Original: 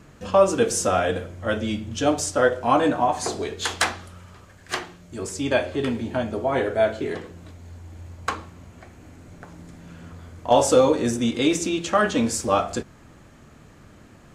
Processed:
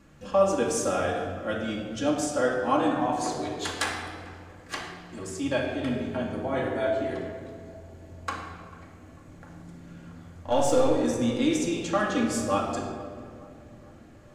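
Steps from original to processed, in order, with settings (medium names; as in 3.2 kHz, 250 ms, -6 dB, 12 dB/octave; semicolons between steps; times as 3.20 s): 10.39–10.91 s: partial rectifier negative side -3 dB; tape echo 443 ms, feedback 70%, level -18 dB, low-pass 1.1 kHz; reverberation RT60 1.9 s, pre-delay 4 ms, DRR -0.5 dB; trim -8.5 dB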